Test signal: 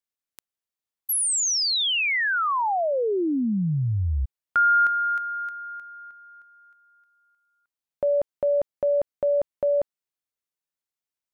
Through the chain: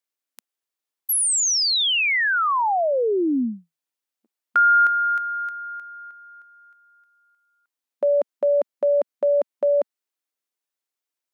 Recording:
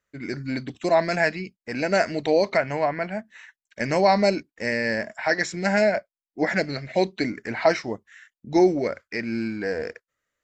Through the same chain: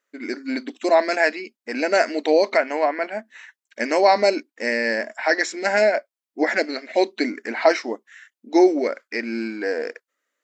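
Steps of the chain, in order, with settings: brick-wall FIR high-pass 220 Hz; trim +3 dB

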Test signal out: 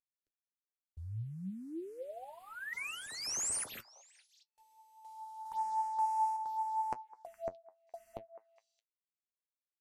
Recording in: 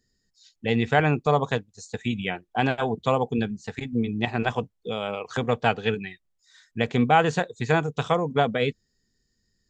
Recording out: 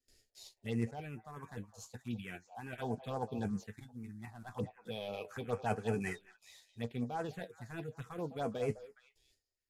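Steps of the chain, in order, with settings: CVSD coder 64 kbps; reverse; compression 8:1, threshold -38 dBFS; reverse; gate with hold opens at -60 dBFS; flange 1 Hz, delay 7.8 ms, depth 3 ms, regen +54%; on a send: repeats whose band climbs or falls 207 ms, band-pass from 700 Hz, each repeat 1.4 oct, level -10 dB; on the sum: random-step tremolo 1.1 Hz, depth 70%; touch-sensitive phaser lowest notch 170 Hz, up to 3.6 kHz, full sweep at -42.5 dBFS; trim +10.5 dB

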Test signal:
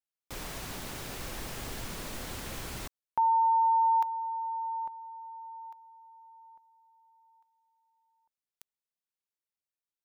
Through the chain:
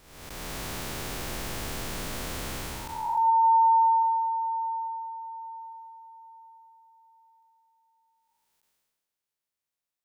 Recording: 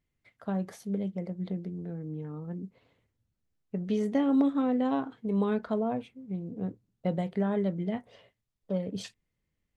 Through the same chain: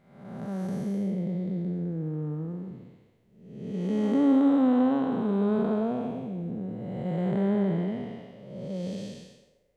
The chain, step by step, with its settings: spectral blur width 464 ms; band-passed feedback delay 132 ms, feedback 59%, band-pass 600 Hz, level -12 dB; trim +6.5 dB

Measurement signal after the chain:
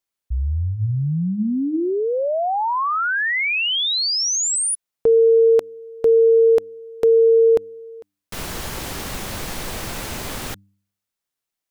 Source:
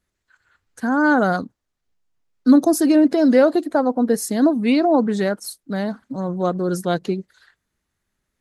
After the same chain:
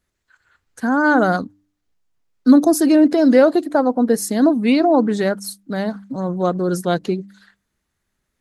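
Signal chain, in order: de-hum 99.12 Hz, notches 3; trim +2 dB

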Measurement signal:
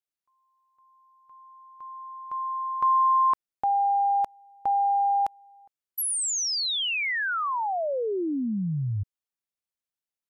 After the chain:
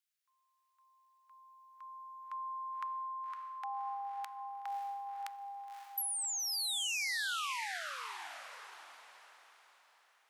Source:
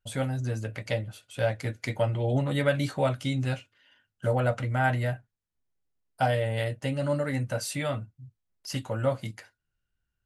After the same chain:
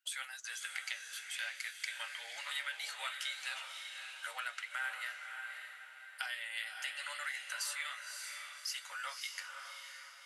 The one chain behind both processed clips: high-pass 1.5 kHz 24 dB/octave; compression 6:1, threshold -42 dBFS; on a send: echo that smears into a reverb 565 ms, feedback 41%, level -5 dB; on the sum: trim +4.5 dB

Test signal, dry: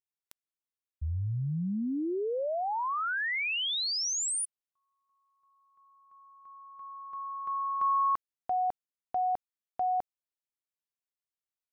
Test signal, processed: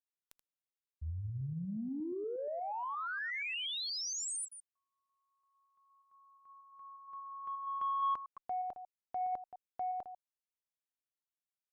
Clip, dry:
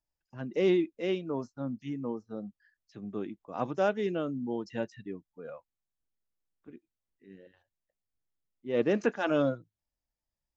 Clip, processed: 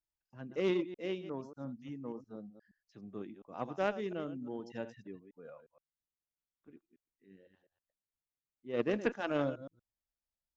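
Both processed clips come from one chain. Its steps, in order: chunks repeated in reverse 118 ms, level -11 dB; Chebyshev shaper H 3 -15 dB, 5 -45 dB, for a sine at -13 dBFS; trim -2 dB

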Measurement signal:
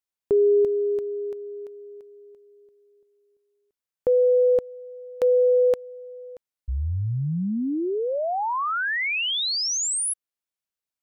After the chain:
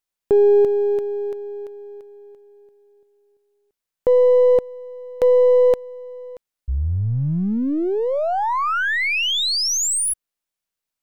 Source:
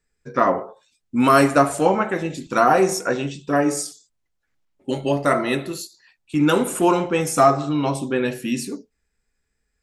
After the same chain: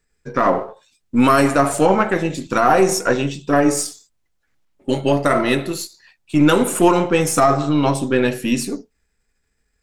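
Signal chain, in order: partial rectifier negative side -3 dB; loudness maximiser +9 dB; trim -3 dB

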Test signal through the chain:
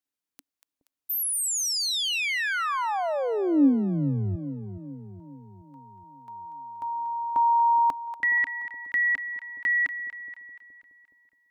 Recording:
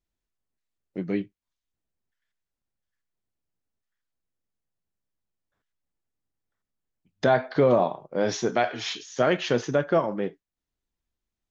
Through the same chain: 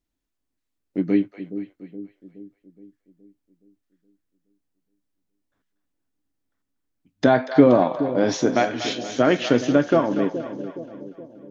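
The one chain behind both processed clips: peaking EQ 280 Hz +12 dB 0.37 oct; on a send: two-band feedback delay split 590 Hz, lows 420 ms, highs 238 ms, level -11 dB; on the sum: trim +2.5 dB

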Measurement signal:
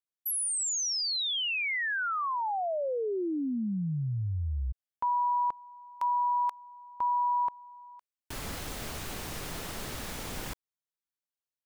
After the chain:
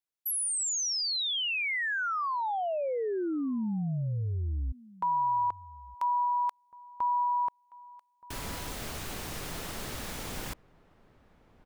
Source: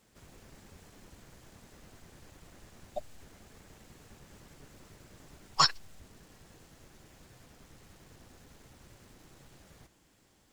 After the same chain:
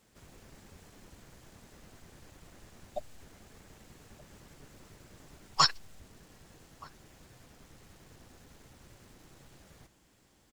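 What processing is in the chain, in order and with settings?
echo from a far wall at 210 m, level -21 dB

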